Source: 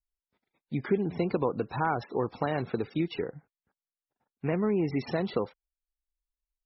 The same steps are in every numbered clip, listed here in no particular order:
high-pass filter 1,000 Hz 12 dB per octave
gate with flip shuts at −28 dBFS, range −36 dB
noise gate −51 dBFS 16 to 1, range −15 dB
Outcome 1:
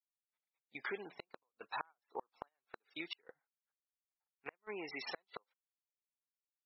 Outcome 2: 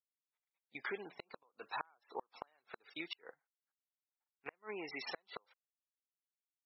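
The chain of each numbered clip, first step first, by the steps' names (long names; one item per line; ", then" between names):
high-pass filter, then gate with flip, then noise gate
high-pass filter, then noise gate, then gate with flip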